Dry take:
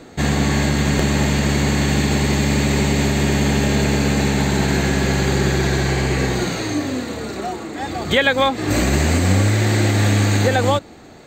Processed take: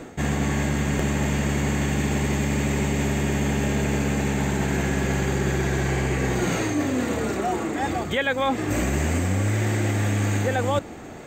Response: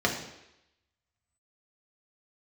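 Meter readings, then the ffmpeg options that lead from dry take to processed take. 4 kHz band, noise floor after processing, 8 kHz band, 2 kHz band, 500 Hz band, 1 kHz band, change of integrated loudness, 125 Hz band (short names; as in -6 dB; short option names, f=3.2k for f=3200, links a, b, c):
-10.5 dB, -37 dBFS, -6.5 dB, -6.0 dB, -5.5 dB, -5.0 dB, -6.0 dB, -6.0 dB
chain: -af "equalizer=f=4.2k:t=o:w=0.35:g=-12.5,areverse,acompressor=threshold=-24dB:ratio=6,areverse,volume=3.5dB"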